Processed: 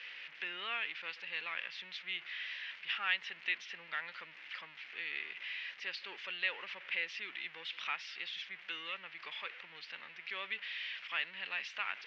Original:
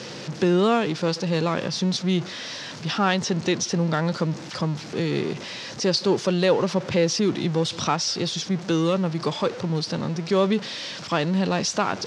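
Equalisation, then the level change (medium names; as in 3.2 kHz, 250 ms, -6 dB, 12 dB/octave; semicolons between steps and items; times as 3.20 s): Butterworth band-pass 2.4 kHz, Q 2; tilt EQ -3.5 dB/octave; +2.5 dB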